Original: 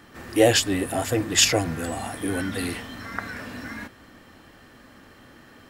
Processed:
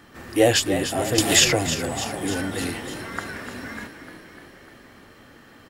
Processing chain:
echo with shifted repeats 299 ms, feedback 63%, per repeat +36 Hz, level −10 dB
0:01.18–0:01.67: multiband upward and downward compressor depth 100%

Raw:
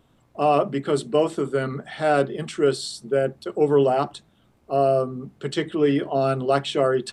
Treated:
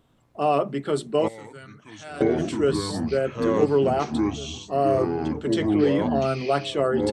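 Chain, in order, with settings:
tape wow and flutter 21 cents
delay with pitch and tempo change per echo 685 ms, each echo −5 semitones, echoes 2
0:01.28–0:02.21: guitar amp tone stack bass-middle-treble 5-5-5
slap from a distant wall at 300 metres, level −17 dB
level −2.5 dB

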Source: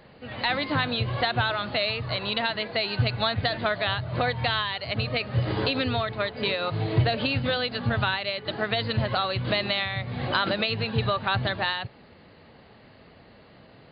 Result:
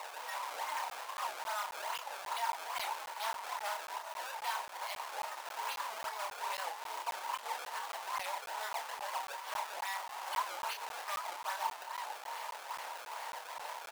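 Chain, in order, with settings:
sine wavefolder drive 10 dB, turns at −11.5 dBFS
downward compressor 6 to 1, threshold −27 dBFS, peak gain reduction 12.5 dB
single-tap delay 230 ms −16.5 dB
brickwall limiter −28 dBFS, peak gain reduction 9.5 dB
sample-and-hold swept by an LFO 26×, swing 160% 2.4 Hz
double-tracking delay 30 ms −4.5 dB
soft clipping −31 dBFS, distortion −14 dB
high-pass filter 730 Hz 24 dB per octave
parametric band 940 Hz +13.5 dB 0.26 octaves
regular buffer underruns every 0.27 s, samples 512, zero, from 0:00.90
wow of a warped record 78 rpm, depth 160 cents
level −2 dB

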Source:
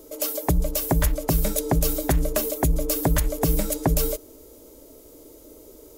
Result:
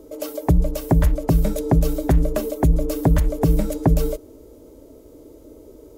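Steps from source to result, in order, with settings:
high-pass filter 110 Hz 6 dB per octave
spectral tilt −3 dB per octave

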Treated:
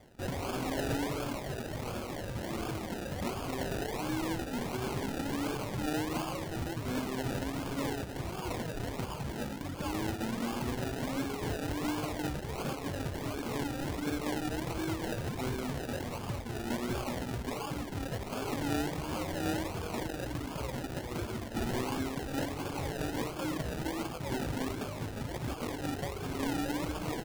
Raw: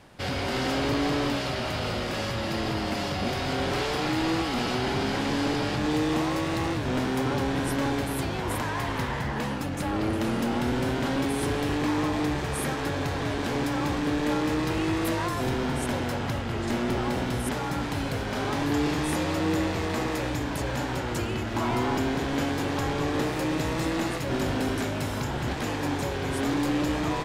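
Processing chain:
reverb reduction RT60 1.5 s
sample-and-hold swept by an LFO 32×, swing 60% 1.4 Hz
level −4.5 dB

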